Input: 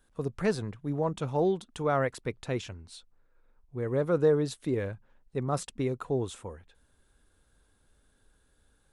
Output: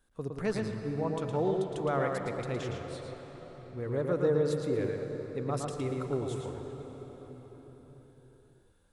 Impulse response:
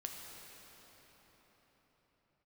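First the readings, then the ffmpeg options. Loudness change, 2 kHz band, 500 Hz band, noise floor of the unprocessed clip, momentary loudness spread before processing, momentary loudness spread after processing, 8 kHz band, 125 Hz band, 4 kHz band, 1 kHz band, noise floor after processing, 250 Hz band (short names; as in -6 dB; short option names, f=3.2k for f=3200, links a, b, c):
-2.5 dB, -2.0 dB, -1.5 dB, -68 dBFS, 18 LU, 18 LU, -3.5 dB, -1.5 dB, -2.5 dB, -2.0 dB, -63 dBFS, -1.5 dB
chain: -filter_complex "[0:a]asplit=2[a][b];[b]highshelf=f=9.5k:g=-11.5[c];[1:a]atrim=start_sample=2205,adelay=113[d];[c][d]afir=irnorm=-1:irlink=0,volume=0.5dB[e];[a][e]amix=inputs=2:normalize=0,volume=-4.5dB"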